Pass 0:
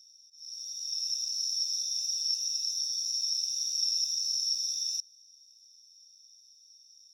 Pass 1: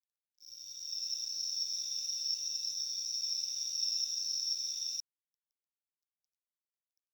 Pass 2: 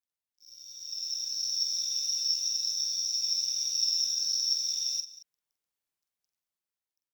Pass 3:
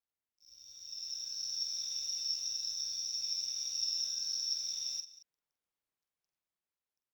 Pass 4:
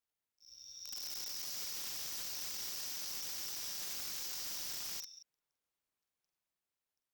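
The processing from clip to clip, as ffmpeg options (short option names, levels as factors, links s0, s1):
-af "lowpass=f=1500:p=1,aeval=exprs='sgn(val(0))*max(abs(val(0))-0.00112,0)':c=same,volume=2.37"
-filter_complex "[0:a]dynaudnorm=f=320:g=7:m=2.24,asplit=2[s0][s1];[s1]aecho=0:1:46|187|224:0.398|0.1|0.106[s2];[s0][s2]amix=inputs=2:normalize=0,volume=0.841"
-af "highshelf=f=3600:g=-10"
-af "aeval=exprs='(mod(79.4*val(0)+1,2)-1)/79.4':c=same,volume=1.12"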